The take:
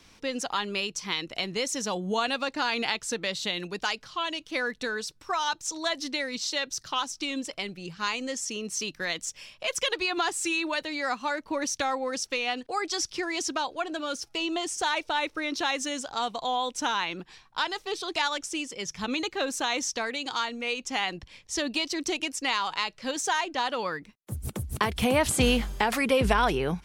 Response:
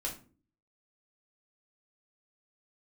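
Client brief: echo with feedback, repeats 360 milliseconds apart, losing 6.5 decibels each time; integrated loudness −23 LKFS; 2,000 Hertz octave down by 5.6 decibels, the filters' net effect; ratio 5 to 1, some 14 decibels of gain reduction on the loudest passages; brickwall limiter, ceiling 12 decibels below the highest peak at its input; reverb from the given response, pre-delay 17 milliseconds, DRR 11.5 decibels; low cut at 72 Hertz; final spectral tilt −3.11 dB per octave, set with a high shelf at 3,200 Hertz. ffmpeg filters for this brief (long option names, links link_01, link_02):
-filter_complex "[0:a]highpass=72,equalizer=frequency=2000:width_type=o:gain=-5.5,highshelf=frequency=3200:gain=-5.5,acompressor=threshold=-36dB:ratio=5,alimiter=level_in=7.5dB:limit=-24dB:level=0:latency=1,volume=-7.5dB,aecho=1:1:360|720|1080|1440|1800|2160:0.473|0.222|0.105|0.0491|0.0231|0.0109,asplit=2[link_01][link_02];[1:a]atrim=start_sample=2205,adelay=17[link_03];[link_02][link_03]afir=irnorm=-1:irlink=0,volume=-13.5dB[link_04];[link_01][link_04]amix=inputs=2:normalize=0,volume=16.5dB"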